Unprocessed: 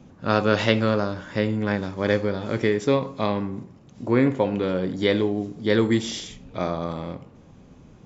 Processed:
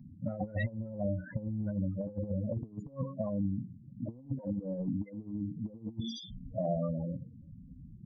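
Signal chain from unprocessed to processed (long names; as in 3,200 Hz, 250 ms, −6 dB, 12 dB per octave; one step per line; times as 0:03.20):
spectral peaks only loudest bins 8
compressor whose output falls as the input rises −28 dBFS, ratio −0.5
phaser with its sweep stopped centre 2,000 Hz, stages 8
level −2.5 dB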